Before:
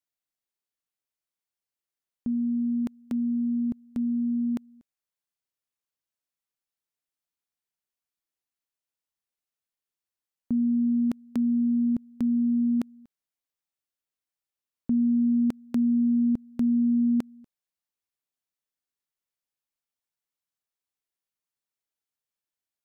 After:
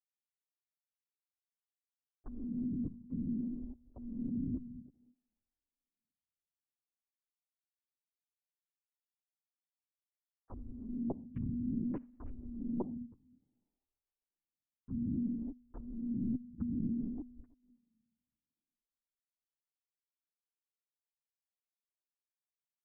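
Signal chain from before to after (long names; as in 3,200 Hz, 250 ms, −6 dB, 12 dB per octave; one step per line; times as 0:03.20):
three sine waves on the formant tracks
spectral tilt −3 dB per octave
reversed playback
downward compressor 6 to 1, threshold −33 dBFS, peak gain reduction 18.5 dB
reversed playback
slap from a distant wall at 55 metres, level −21 dB
on a send at −19.5 dB: convolution reverb, pre-delay 3 ms
on the sum: linear-prediction vocoder at 8 kHz whisper
phaser with staggered stages 0.59 Hz
level −1 dB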